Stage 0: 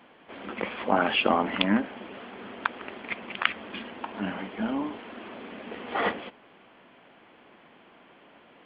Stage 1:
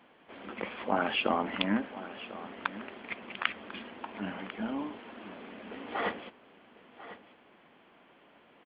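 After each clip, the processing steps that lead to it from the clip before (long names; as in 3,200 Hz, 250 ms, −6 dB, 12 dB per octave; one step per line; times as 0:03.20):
single-tap delay 1,046 ms −15 dB
level −5.5 dB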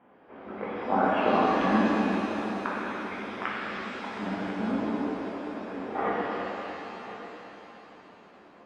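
low-pass filter 1,300 Hz 12 dB per octave
reverb with rising layers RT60 3.2 s, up +7 semitones, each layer −8 dB, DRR −7 dB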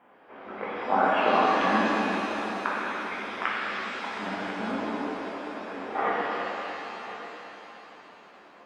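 low-shelf EQ 420 Hz −12 dB
level +5 dB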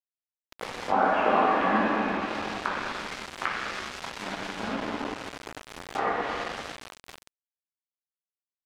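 centre clipping without the shift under −30 dBFS
treble cut that deepens with the level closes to 2,500 Hz, closed at −24 dBFS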